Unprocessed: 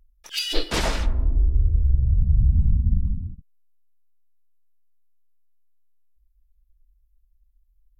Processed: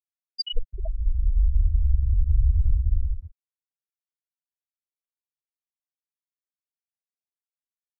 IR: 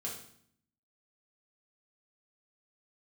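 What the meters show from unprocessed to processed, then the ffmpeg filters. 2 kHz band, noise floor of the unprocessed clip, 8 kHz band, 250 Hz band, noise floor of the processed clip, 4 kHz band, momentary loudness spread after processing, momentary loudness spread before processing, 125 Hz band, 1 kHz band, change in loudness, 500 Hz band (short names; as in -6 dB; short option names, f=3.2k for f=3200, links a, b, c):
under -35 dB, -64 dBFS, n/a, under -20 dB, under -85 dBFS, -6.5 dB, 10 LU, 9 LU, -3.0 dB, under -25 dB, -2.5 dB, under -10 dB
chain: -af "afftfilt=real='re*gte(hypot(re,im),0.447)':imag='im*gte(hypot(re,im),0.447)':win_size=1024:overlap=0.75,equalizer=f=125:t=o:w=1:g=-9,equalizer=f=250:t=o:w=1:g=-3,equalizer=f=2k:t=o:w=1:g=6,equalizer=f=4k:t=o:w=1:g=4"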